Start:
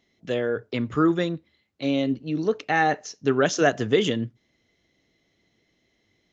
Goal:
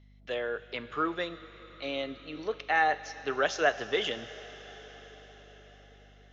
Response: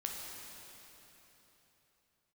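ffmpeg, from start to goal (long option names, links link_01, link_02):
-filter_complex "[0:a]acrossover=split=480 5100:gain=0.112 1 0.0708[link_01][link_02][link_03];[link_01][link_02][link_03]amix=inputs=3:normalize=0,asplit=2[link_04][link_05];[1:a]atrim=start_sample=2205,asetrate=22050,aresample=44100,highshelf=frequency=2500:gain=10.5[link_06];[link_05][link_06]afir=irnorm=-1:irlink=0,volume=-19.5dB[link_07];[link_04][link_07]amix=inputs=2:normalize=0,aeval=exprs='val(0)+0.00251*(sin(2*PI*50*n/s)+sin(2*PI*2*50*n/s)/2+sin(2*PI*3*50*n/s)/3+sin(2*PI*4*50*n/s)/4+sin(2*PI*5*50*n/s)/5)':channel_layout=same,volume=-4dB"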